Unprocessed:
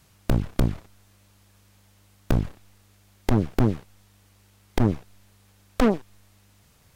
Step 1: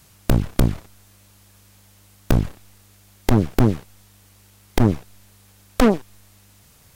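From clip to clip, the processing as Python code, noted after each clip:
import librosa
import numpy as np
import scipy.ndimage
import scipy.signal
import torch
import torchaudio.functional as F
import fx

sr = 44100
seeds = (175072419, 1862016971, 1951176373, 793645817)

y = fx.high_shelf(x, sr, hz=6000.0, db=6.5)
y = F.gain(torch.from_numpy(y), 4.5).numpy()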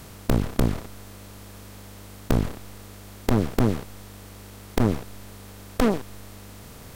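y = fx.bin_compress(x, sr, power=0.6)
y = F.gain(torch.from_numpy(y), -7.0).numpy()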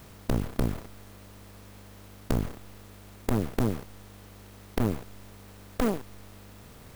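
y = fx.clock_jitter(x, sr, seeds[0], jitter_ms=0.038)
y = F.gain(torch.from_numpy(y), -5.5).numpy()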